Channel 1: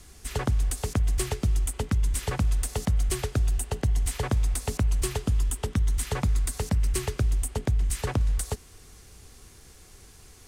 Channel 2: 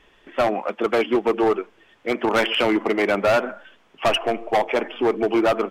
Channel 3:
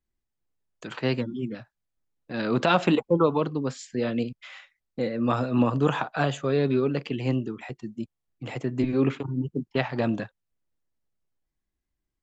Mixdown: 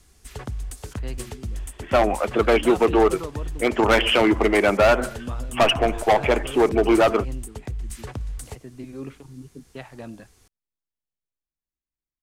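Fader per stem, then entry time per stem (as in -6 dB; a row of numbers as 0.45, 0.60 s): -6.5, +2.0, -12.5 dB; 0.00, 1.55, 0.00 s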